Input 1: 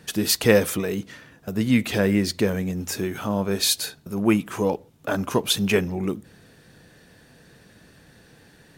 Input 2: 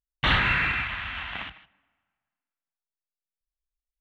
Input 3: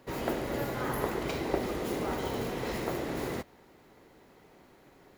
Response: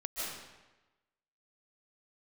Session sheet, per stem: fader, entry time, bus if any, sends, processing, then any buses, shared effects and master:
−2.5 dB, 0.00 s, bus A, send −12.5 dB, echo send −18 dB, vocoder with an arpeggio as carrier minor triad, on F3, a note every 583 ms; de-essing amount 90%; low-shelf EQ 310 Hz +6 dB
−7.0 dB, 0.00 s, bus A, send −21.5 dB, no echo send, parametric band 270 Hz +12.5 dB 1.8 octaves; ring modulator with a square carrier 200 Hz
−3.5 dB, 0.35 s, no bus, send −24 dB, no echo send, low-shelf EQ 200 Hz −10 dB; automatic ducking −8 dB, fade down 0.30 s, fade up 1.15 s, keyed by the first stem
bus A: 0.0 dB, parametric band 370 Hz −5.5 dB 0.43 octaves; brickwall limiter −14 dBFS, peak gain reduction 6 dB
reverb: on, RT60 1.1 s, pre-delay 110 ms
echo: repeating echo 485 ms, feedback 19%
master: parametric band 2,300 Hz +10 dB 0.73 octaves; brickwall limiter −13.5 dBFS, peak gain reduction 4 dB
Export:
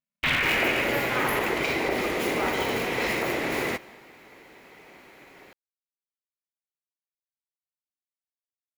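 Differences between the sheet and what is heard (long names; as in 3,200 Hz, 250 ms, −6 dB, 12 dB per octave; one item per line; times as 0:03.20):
stem 1: muted
stem 2: missing parametric band 270 Hz +12.5 dB 1.8 octaves
stem 3 −3.5 dB → +7.0 dB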